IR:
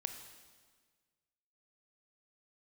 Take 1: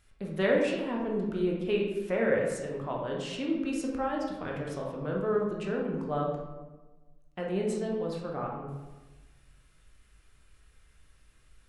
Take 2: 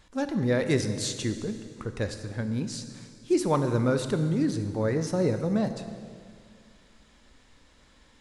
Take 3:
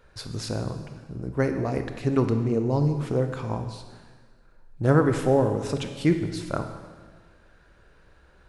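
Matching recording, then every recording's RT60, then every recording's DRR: 3; 1.2 s, 2.1 s, 1.6 s; -2.0 dB, 8.0 dB, 6.5 dB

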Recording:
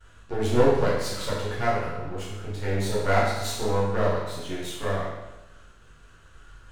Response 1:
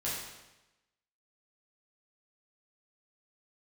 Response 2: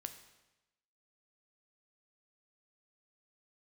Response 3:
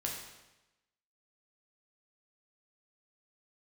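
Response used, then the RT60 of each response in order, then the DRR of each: 1; 1.0 s, 1.0 s, 1.0 s; -8.5 dB, 7.5 dB, -2.0 dB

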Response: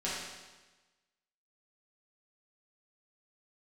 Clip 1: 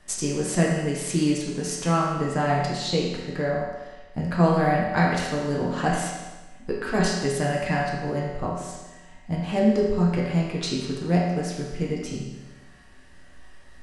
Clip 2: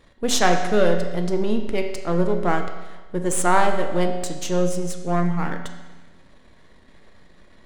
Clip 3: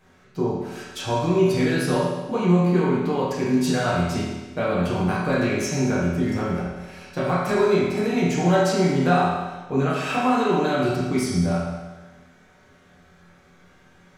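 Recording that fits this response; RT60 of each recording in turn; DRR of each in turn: 3; 1.2 s, 1.2 s, 1.2 s; -4.5 dB, 4.0 dB, -9.0 dB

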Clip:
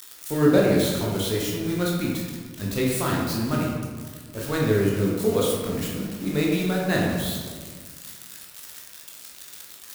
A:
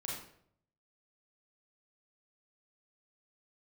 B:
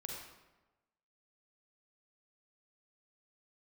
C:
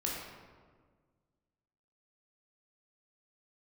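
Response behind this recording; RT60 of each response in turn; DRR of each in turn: C; 0.65 s, 1.1 s, 1.6 s; -4.5 dB, -1.0 dB, -4.0 dB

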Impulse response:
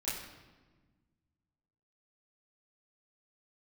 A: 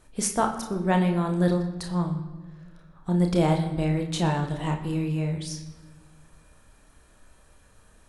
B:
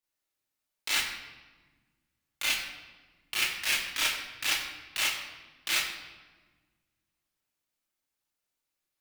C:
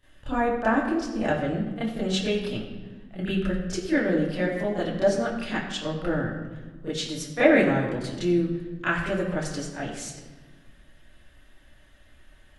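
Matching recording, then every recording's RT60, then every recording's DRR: C; 1.4 s, 1.3 s, 1.3 s; 3.0 dB, -7.0 dB, -12.5 dB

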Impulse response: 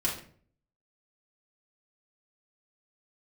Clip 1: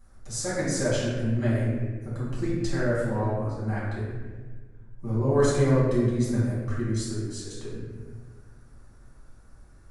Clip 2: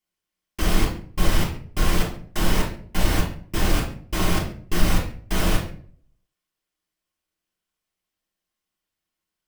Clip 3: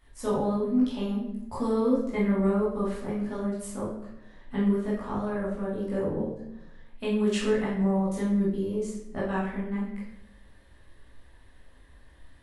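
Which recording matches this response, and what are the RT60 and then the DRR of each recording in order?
2; 1.4 s, 0.50 s, 0.85 s; -10.0 dB, -4.5 dB, -7.5 dB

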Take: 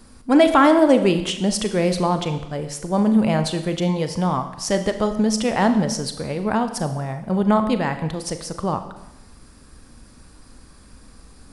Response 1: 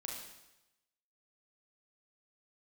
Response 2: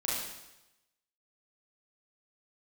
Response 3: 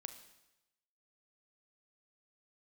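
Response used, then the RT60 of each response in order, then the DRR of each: 3; 0.95 s, 0.95 s, 0.95 s; -1.5 dB, -7.0 dB, 8.0 dB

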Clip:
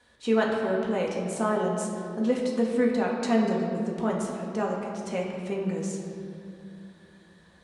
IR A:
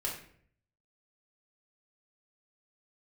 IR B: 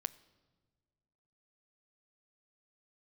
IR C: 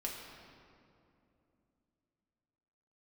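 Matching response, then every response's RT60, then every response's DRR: C; 0.60 s, no single decay rate, 2.8 s; -3.0 dB, 15.5 dB, -2.5 dB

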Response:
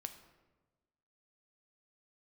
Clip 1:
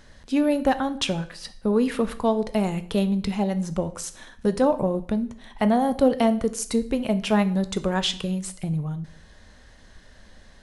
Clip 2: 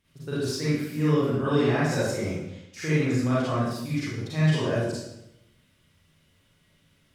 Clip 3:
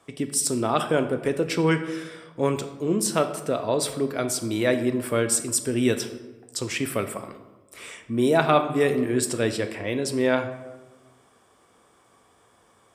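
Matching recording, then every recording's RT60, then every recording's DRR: 3; 0.55 s, 0.85 s, 1.2 s; 11.0 dB, -10.5 dB, 7.5 dB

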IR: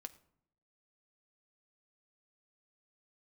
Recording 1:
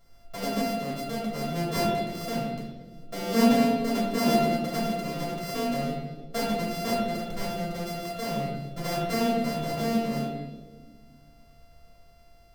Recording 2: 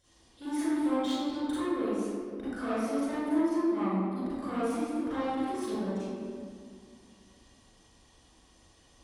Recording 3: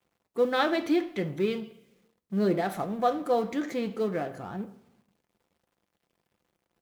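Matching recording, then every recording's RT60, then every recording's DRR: 3; 1.5 s, 2.1 s, 0.70 s; -5.5 dB, -12.0 dB, 8.0 dB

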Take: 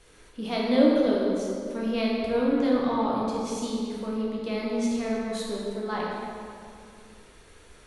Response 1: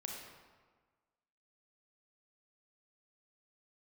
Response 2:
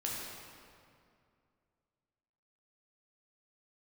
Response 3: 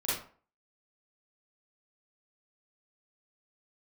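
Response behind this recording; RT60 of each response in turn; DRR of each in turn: 2; 1.5 s, 2.3 s, 0.45 s; -0.5 dB, -4.5 dB, -10.0 dB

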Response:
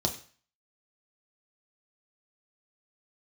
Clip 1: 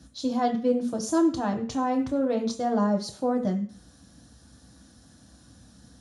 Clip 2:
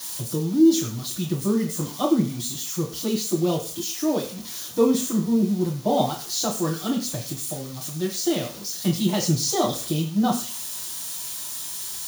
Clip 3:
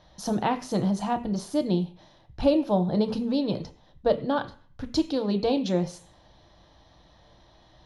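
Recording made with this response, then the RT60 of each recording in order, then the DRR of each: 1; 0.45 s, 0.45 s, 0.45 s; 2.0 dB, -4.0 dB, 7.5 dB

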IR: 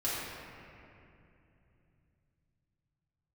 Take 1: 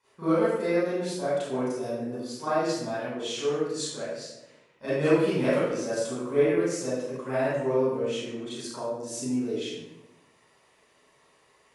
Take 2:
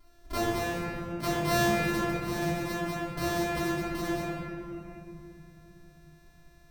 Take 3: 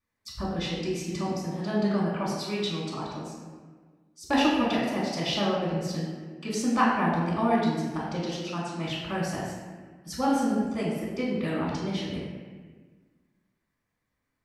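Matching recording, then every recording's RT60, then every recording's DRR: 2; 0.95 s, 2.8 s, 1.5 s; -14.0 dB, -10.0 dB, -5.0 dB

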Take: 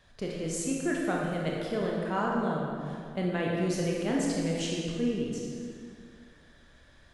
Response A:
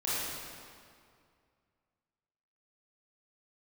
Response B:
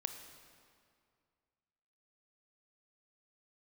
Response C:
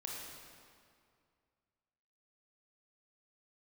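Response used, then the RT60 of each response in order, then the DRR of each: C; 2.2 s, 2.2 s, 2.2 s; -10.0 dB, 7.0 dB, -3.0 dB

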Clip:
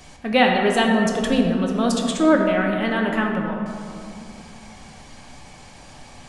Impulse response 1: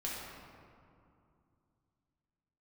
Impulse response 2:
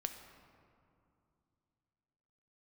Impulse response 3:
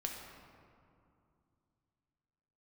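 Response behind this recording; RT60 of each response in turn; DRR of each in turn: 3; 2.5 s, 2.6 s, 2.5 s; -6.0 dB, 6.0 dB, 0.5 dB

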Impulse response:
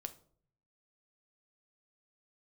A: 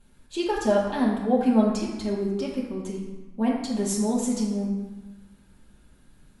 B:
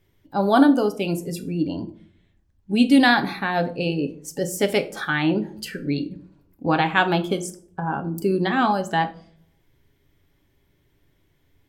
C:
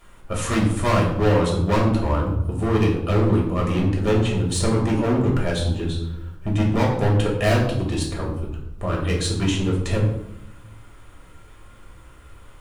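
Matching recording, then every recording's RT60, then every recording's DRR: B; 1.2 s, 0.55 s, 0.85 s; -6.5 dB, 7.5 dB, -3.0 dB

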